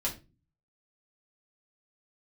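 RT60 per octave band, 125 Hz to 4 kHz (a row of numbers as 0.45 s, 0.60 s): 0.70 s, 0.55 s, 0.35 s, 0.25 s, 0.25 s, 0.25 s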